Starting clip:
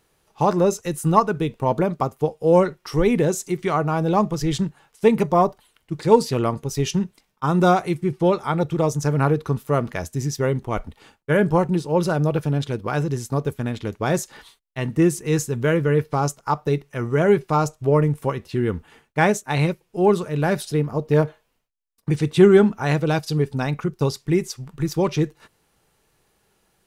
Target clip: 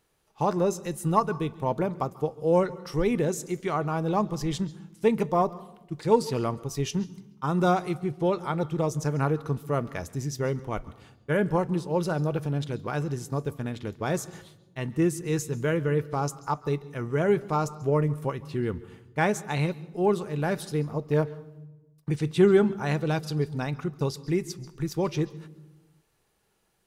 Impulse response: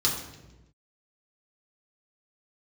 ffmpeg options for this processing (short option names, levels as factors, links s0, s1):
-filter_complex "[0:a]asplit=2[s0][s1];[1:a]atrim=start_sample=2205,adelay=135[s2];[s1][s2]afir=irnorm=-1:irlink=0,volume=0.0335[s3];[s0][s3]amix=inputs=2:normalize=0,volume=0.473"